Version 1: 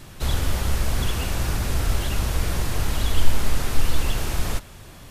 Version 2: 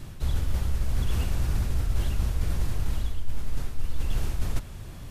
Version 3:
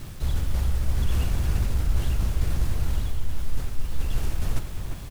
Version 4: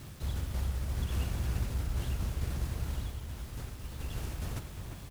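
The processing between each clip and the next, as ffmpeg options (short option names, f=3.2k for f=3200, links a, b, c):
-af "lowshelf=f=240:g=10.5,areverse,acompressor=threshold=-16dB:ratio=6,areverse,volume=-4.5dB"
-filter_complex "[0:a]asplit=2[a][b];[b]asoftclip=type=tanh:threshold=-29dB,volume=-10dB[c];[a][c]amix=inputs=2:normalize=0,acrusher=bits=7:mix=0:aa=0.000001,asplit=2[d][e];[e]adelay=349.9,volume=-7dB,highshelf=f=4k:g=-7.87[f];[d][f]amix=inputs=2:normalize=0"
-af "highpass=54,volume=-6dB"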